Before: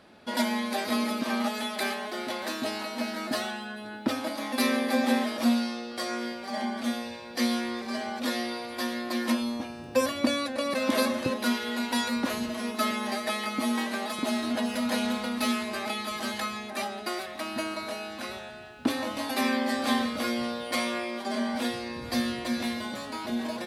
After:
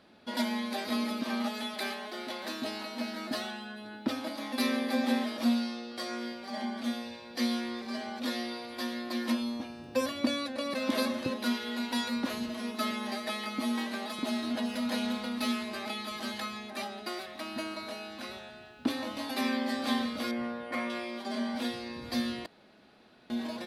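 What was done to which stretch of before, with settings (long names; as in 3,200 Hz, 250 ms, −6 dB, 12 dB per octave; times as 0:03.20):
0:01.74–0:02.45: high-pass filter 190 Hz 6 dB per octave
0:20.31–0:20.90: high shelf with overshoot 2,700 Hz −11 dB, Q 1.5
0:22.46–0:23.30: fill with room tone
whole clip: octave-band graphic EQ 250/4,000/8,000 Hz +3/+4/−3 dB; level −6 dB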